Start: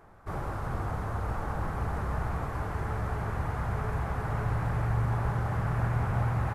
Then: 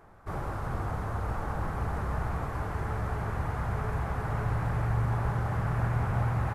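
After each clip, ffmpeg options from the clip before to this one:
ffmpeg -i in.wav -af anull out.wav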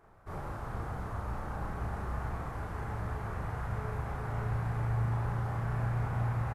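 ffmpeg -i in.wav -filter_complex "[0:a]asplit=2[link_01][link_02];[link_02]adelay=35,volume=-2dB[link_03];[link_01][link_03]amix=inputs=2:normalize=0,volume=-7dB" out.wav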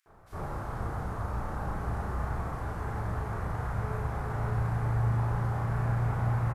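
ffmpeg -i in.wav -filter_complex "[0:a]acrossover=split=2600[link_01][link_02];[link_01]adelay=60[link_03];[link_03][link_02]amix=inputs=2:normalize=0,volume=3.5dB" out.wav

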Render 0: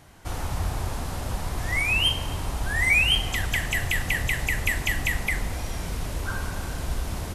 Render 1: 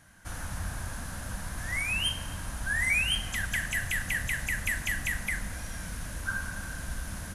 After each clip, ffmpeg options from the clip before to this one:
ffmpeg -i in.wav -af "equalizer=frequency=200:width_type=o:width=0.33:gain=6,equalizer=frequency=400:width_type=o:width=0.33:gain=-12,equalizer=frequency=800:width_type=o:width=0.33:gain=-4,equalizer=frequency=1600:width_type=o:width=0.33:gain=12,equalizer=frequency=6300:width_type=o:width=0.33:gain=5,equalizer=frequency=10000:width_type=o:width=0.33:gain=11,volume=-8dB" out.wav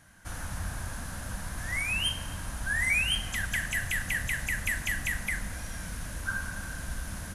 ffmpeg -i in.wav -af anull out.wav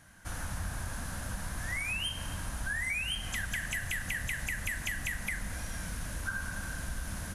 ffmpeg -i in.wav -af "acompressor=threshold=-31dB:ratio=6" out.wav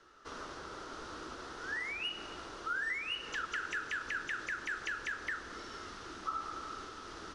ffmpeg -i in.wav -af "highpass=400,equalizer=frequency=600:width_type=q:width=4:gain=6,equalizer=frequency=990:width_type=q:width=4:gain=-6,equalizer=frequency=2600:width_type=q:width=4:gain=-6,lowpass=frequency=5400:width=0.5412,lowpass=frequency=5400:width=1.3066,afreqshift=-260" out.wav

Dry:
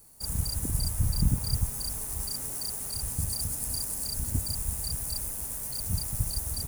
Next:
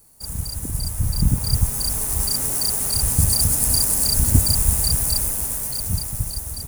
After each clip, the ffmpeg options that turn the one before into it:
ffmpeg -i in.wav -af "dynaudnorm=framelen=340:gausssize=9:maxgain=13.5dB,volume=2dB" out.wav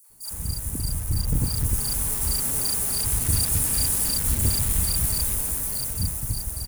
ffmpeg -i in.wav -filter_complex "[0:a]asoftclip=type=tanh:threshold=-17.5dB,acrossover=split=690|5600[link_01][link_02][link_03];[link_02]adelay=40[link_04];[link_01]adelay=100[link_05];[link_05][link_04][link_03]amix=inputs=3:normalize=0" out.wav

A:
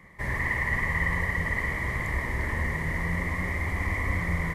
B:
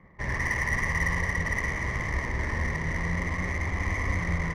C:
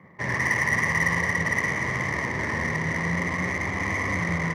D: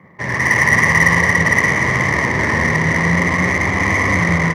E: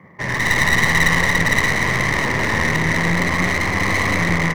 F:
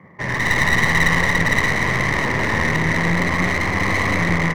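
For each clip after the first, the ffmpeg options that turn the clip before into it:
ffmpeg -i in.wav -af "adynamicsmooth=sensitivity=5.5:basefreq=1300" out.wav
ffmpeg -i in.wav -af "highpass=frequency=110:width=0.5412,highpass=frequency=110:width=1.3066,volume=5dB" out.wav
ffmpeg -i in.wav -af "dynaudnorm=framelen=300:gausssize=3:maxgain=6dB,volume=5dB" out.wav
ffmpeg -i in.wav -af "aeval=exprs='clip(val(0),-1,0.0708)':channel_layout=same" out.wav
ffmpeg -i in.wav -af "highshelf=frequency=4000:gain=-5.5" out.wav

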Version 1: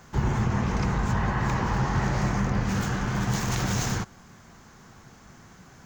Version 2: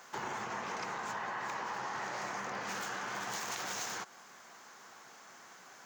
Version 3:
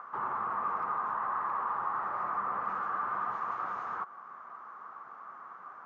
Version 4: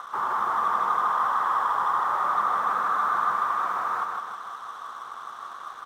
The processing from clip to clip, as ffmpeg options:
ffmpeg -i in.wav -af "highpass=560,acompressor=threshold=-36dB:ratio=6" out.wav
ffmpeg -i in.wav -af "acompressor=mode=upward:threshold=-50dB:ratio=2.5,asoftclip=type=hard:threshold=-36.5dB,lowpass=frequency=1200:width_type=q:width=8.5,volume=-2.5dB" out.wav
ffmpeg -i in.wav -filter_complex "[0:a]asplit=2[link_01][link_02];[link_02]highpass=frequency=720:poles=1,volume=9dB,asoftclip=type=tanh:threshold=-21.5dB[link_03];[link_01][link_03]amix=inputs=2:normalize=0,lowpass=frequency=2300:poles=1,volume=-6dB,aeval=exprs='sgn(val(0))*max(abs(val(0))-0.00188,0)':channel_layout=same,aecho=1:1:156|312|468|624|780|936|1092:0.631|0.341|0.184|0.0994|0.0537|0.029|0.0156,volume=5.5dB" out.wav

